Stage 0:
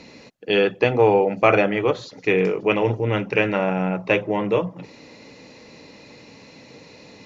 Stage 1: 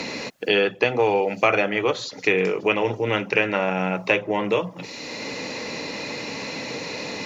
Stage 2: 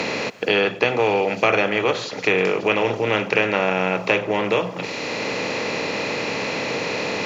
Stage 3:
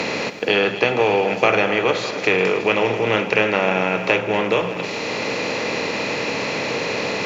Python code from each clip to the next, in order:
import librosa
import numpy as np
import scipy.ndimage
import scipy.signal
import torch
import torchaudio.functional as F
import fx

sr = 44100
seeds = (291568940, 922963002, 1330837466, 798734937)

y1 = fx.tilt_eq(x, sr, slope=2.0)
y1 = fx.band_squash(y1, sr, depth_pct=70)
y2 = fx.bin_compress(y1, sr, power=0.6)
y2 = y2 + 10.0 ** (-23.5 / 20.0) * np.pad(y2, (int(99 * sr / 1000.0), 0))[:len(y2)]
y2 = F.gain(torch.from_numpy(y2), -1.5).numpy()
y3 = fx.reverse_delay_fb(y2, sr, ms=132, feedback_pct=73, wet_db=-13)
y3 = y3 + 10.0 ** (-17.0 / 20.0) * np.pad(y3, (int(616 * sr / 1000.0), 0))[:len(y3)]
y3 = F.gain(torch.from_numpy(y3), 1.0).numpy()